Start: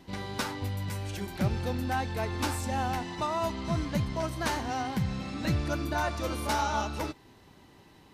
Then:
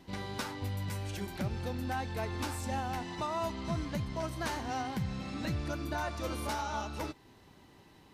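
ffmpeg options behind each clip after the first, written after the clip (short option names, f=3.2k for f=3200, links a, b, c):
-af "alimiter=limit=-22.5dB:level=0:latency=1:release=342,volume=-2.5dB"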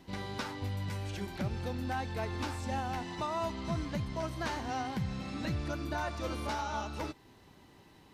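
-filter_complex "[0:a]acrossover=split=6400[a][b];[b]acompressor=threshold=-58dB:ratio=4:attack=1:release=60[c];[a][c]amix=inputs=2:normalize=0"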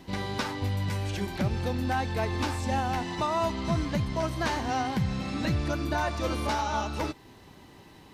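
-af "bandreject=f=1.4k:w=28,volume=7dB"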